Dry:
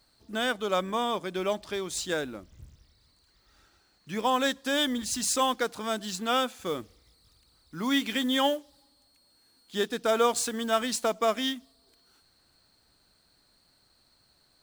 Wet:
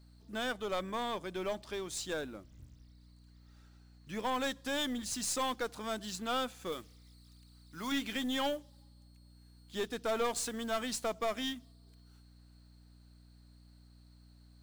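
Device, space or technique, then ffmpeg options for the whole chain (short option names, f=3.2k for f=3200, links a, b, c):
valve amplifier with mains hum: -filter_complex "[0:a]asettb=1/sr,asplit=3[a][b][c];[a]atrim=end=6.724[d];[b]atrim=start=6.72:end=7.92,asetpts=PTS-STARTPTS,afade=t=in:d=0.004:c=qsin,afade=t=out:st=1.196:d=0.004:c=qsin,tiltshelf=f=970:g=-5[e];[c]atrim=start=7.916[f];[d][e]acrossfade=d=0.004:c1=hsin:c2=qsin[g];[g][f]acrossfade=d=0.004:c1=qsin:c2=hsin,aeval=exprs='(tanh(11.2*val(0)+0.25)-tanh(0.25))/11.2':c=same,aeval=exprs='val(0)+0.00251*(sin(2*PI*60*n/s)+sin(2*PI*2*60*n/s)/2+sin(2*PI*3*60*n/s)/3+sin(2*PI*4*60*n/s)/4+sin(2*PI*5*60*n/s)/5)':c=same,volume=-5.5dB"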